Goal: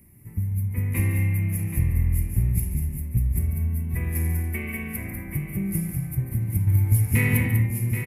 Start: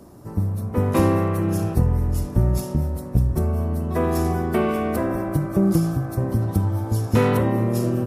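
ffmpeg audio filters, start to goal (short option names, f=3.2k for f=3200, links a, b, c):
-filter_complex "[0:a]firequalizer=gain_entry='entry(110,0);entry(270,-12);entry(610,-23);entry(870,-18);entry(1400,-19);entry(2100,10);entry(3300,-14);entry(5700,-15);entry(11000,8)':delay=0.05:min_phase=1,asettb=1/sr,asplit=3[a][b][c];[a]atrim=end=6.674[d];[b]atrim=start=6.67:end=7.47,asetpts=PTS-STARTPTS,afade=t=in:d=0.004:c=qsin,afade=t=out:st=0.796:d=0.004:c=qsin,acontrast=65[e];[c]atrim=start=7.466[f];[d][e]acrossfade=d=0.004:c1=hsin:c2=qsin[g];[g][f]acrossfade=d=0.004:c1=qsin:c2=hsin,asplit=2[h][i];[i]aecho=0:1:142|195|780:0.251|0.447|0.335[j];[h][j]amix=inputs=2:normalize=0,volume=-3dB"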